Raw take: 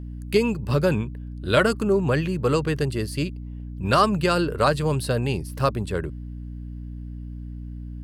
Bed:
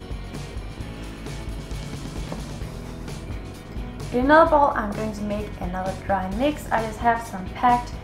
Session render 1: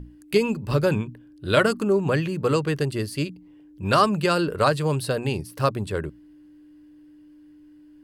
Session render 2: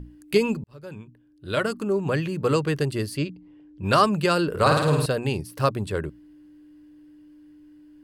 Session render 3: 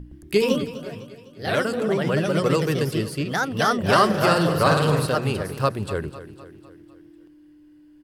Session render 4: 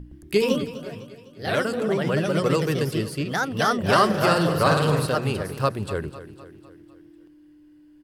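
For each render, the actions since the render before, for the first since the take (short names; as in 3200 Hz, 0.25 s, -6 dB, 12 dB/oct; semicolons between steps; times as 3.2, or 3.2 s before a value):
notches 60/120/180/240 Hz
0.64–2.54 fade in; 3.17–3.84 air absorption 100 m; 4.49–5.06 flutter echo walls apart 9.1 m, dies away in 0.92 s
echoes that change speed 0.114 s, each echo +2 st, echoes 2; feedback echo 0.252 s, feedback 51%, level -14.5 dB
gain -1 dB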